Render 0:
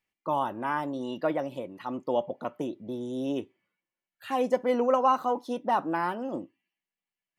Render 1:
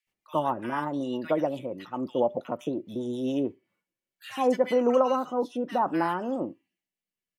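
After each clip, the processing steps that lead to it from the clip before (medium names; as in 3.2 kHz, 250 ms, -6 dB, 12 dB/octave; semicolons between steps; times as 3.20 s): bands offset in time highs, lows 70 ms, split 1.6 kHz; rotary cabinet horn 7.5 Hz, later 0.6 Hz, at 3.12 s; trim +4.5 dB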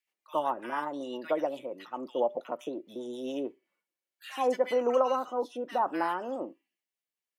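high-pass 370 Hz 12 dB/octave; trim -2 dB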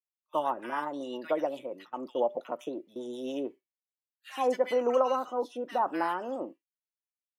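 expander -41 dBFS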